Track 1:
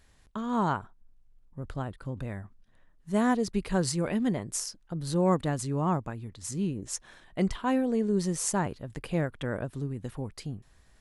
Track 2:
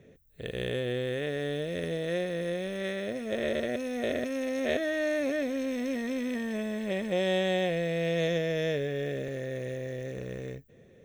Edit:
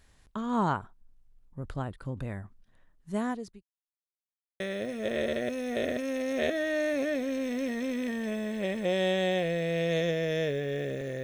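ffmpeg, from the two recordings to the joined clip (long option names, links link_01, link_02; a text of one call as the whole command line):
ffmpeg -i cue0.wav -i cue1.wav -filter_complex "[0:a]apad=whole_dur=11.23,atrim=end=11.23,asplit=2[link_01][link_02];[link_01]atrim=end=3.63,asetpts=PTS-STARTPTS,afade=type=out:start_time=2.44:duration=1.19:curve=qsin[link_03];[link_02]atrim=start=3.63:end=4.6,asetpts=PTS-STARTPTS,volume=0[link_04];[1:a]atrim=start=2.87:end=9.5,asetpts=PTS-STARTPTS,afade=type=in:duration=0.004:curve=hsin[link_05];[link_03][link_04][link_05]concat=n=3:v=0:a=1" out.wav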